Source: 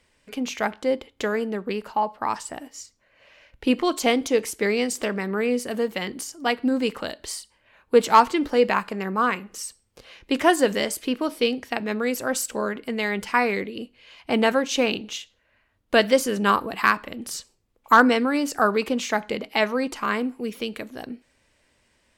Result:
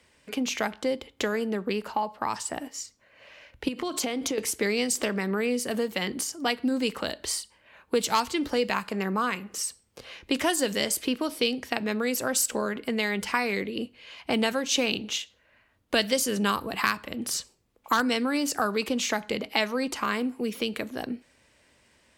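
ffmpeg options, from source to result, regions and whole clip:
-filter_complex "[0:a]asettb=1/sr,asplit=3[a][b][c];[a]atrim=end=3.684[d];[b]atrim=start=3.68:end=4.38,asetpts=PTS-STARTPTS,afade=t=in:d=0.004:c=qsin,afade=t=out:st=0.696:d=0.004:c=qsin,acompressor=threshold=-26dB:ratio=16:attack=3.2:release=140:knee=1:detection=peak,aeval=exprs='val(0)+0.00158*(sin(2*PI*50*n/s)+sin(2*PI*2*50*n/s)/2+sin(2*PI*3*50*n/s)/3+sin(2*PI*4*50*n/s)/4+sin(2*PI*5*50*n/s)/5)':c=same[e];[c]atrim=start=4.376[f];[d][e]acrossfade=d=0.004:c1=hsin:c2=qsin[g];[g][f]acrossfade=d=0.004:c1=qsin:c2=hsin,highpass=49,bandreject=f=50:t=h:w=6,bandreject=f=100:t=h:w=6,acrossover=split=140|3000[h][i][j];[i]acompressor=threshold=-30dB:ratio=3[k];[h][k][j]amix=inputs=3:normalize=0,volume=3dB"

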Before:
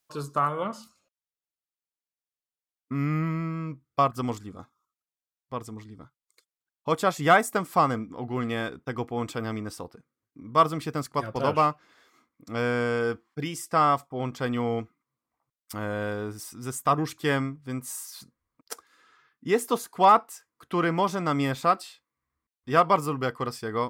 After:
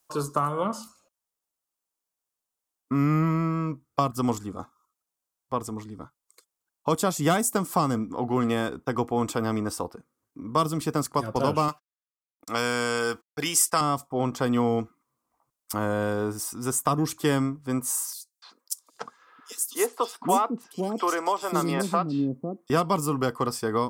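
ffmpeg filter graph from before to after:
-filter_complex "[0:a]asettb=1/sr,asplit=3[a][b][c];[a]atrim=end=11.684[d];[b]atrim=start=11.68:end=13.81,asetpts=PTS-STARTPTS,afade=t=in:d=0.004:c=qsin,afade=t=out:st=2.126:d=0.004:c=qsin,agate=range=-57dB:threshold=-52dB:ratio=16:release=100:detection=peak,tiltshelf=f=660:g=-8.5[e];[c]atrim=start=13.806[f];[d][e]acrossfade=d=0.004:c1=hsin:c2=qsin[g];[g][f]acrossfade=d=0.004:c1=qsin:c2=hsin,asettb=1/sr,asplit=3[h][i][j];[h]atrim=end=18.134[k];[i]atrim=start=18.13:end=22.7,asetpts=PTS-STARTPTS,afade=t=in:d=0.004:c=qsin,afade=t=out:st=4.566:d=0.004:c=qsin,highpass=170,acrossover=split=370|3900[l][m][n];[m]adelay=290[o];[l]adelay=790[p];[p][o][n]amix=inputs=3:normalize=0,atrim=end_sample=201537[q];[j]atrim=start=22.696[r];[k][q]acrossfade=d=0.004:c1=hsin:c2=qsin[s];[s][r]acrossfade=d=0.004:c1=qsin:c2=hsin,equalizer=f=8k:w=0.61:g=3,acrossover=split=310|3000[t][u][v];[u]acompressor=threshold=-32dB:ratio=6[w];[t][w][v]amix=inputs=3:normalize=0,equalizer=f=125:t=o:w=1:g=-5,equalizer=f=1k:t=o:w=1:g=4,equalizer=f=2k:t=o:w=1:g=-6,equalizer=f=4k:t=o:w=1:g=-5,volume=7dB"

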